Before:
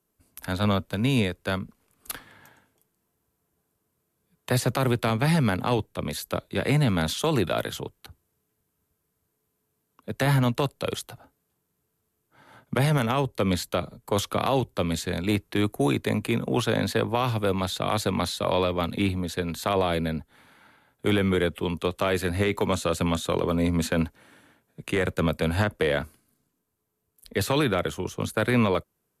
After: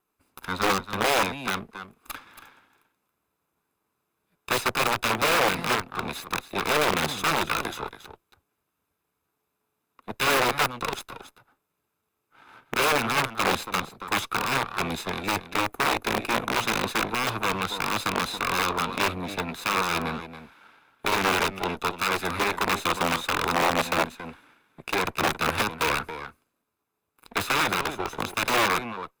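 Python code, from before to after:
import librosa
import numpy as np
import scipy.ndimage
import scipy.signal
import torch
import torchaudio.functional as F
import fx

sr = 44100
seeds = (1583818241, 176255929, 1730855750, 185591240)

p1 = fx.lower_of_two(x, sr, delay_ms=0.8)
p2 = p1 + fx.echo_single(p1, sr, ms=277, db=-12.0, dry=0)
p3 = (np.mod(10.0 ** (19.0 / 20.0) * p2 + 1.0, 2.0) - 1.0) / 10.0 ** (19.0 / 20.0)
p4 = fx.bass_treble(p3, sr, bass_db=-14, treble_db=-9)
y = p4 * librosa.db_to_amplitude(4.5)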